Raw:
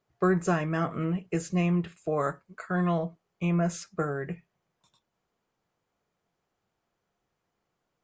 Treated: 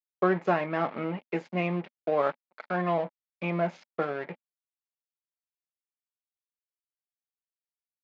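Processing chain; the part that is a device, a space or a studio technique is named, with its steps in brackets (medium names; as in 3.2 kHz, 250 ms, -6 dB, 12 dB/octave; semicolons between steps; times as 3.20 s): blown loudspeaker (crossover distortion -41.5 dBFS; cabinet simulation 230–4100 Hz, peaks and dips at 240 Hz +5 dB, 580 Hz +6 dB, 860 Hz +8 dB, 2.2 kHz +7 dB)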